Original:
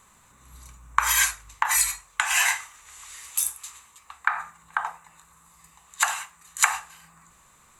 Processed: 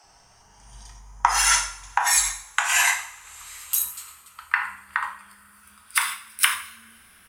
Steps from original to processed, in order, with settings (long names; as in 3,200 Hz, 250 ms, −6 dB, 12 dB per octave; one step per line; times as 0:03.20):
gliding playback speed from 73% → 141%
multiband delay without the direct sound highs, lows 40 ms, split 290 Hz
coupled-rooms reverb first 0.54 s, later 4.3 s, from −28 dB, DRR 5.5 dB
level +1 dB